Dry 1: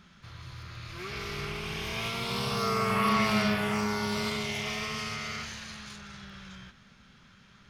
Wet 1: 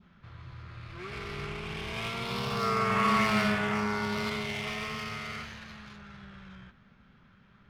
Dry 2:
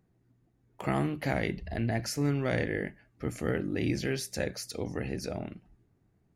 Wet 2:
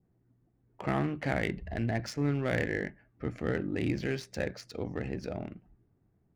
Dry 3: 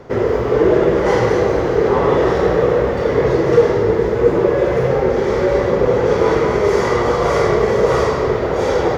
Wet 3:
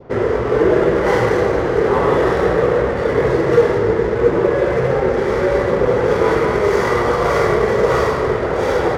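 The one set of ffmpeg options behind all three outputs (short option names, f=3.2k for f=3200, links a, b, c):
-af "adynamicsmooth=sensitivity=7:basefreq=2.2k,adynamicequalizer=threshold=0.0141:dfrequency=1600:dqfactor=1.4:tfrequency=1600:tqfactor=1.4:attack=5:release=100:ratio=0.375:range=2:mode=boostabove:tftype=bell,volume=-1dB"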